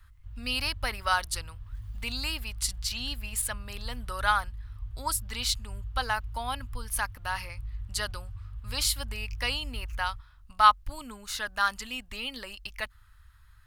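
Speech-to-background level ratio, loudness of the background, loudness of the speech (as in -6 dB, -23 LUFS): 12.0 dB, -42.5 LUFS, -30.5 LUFS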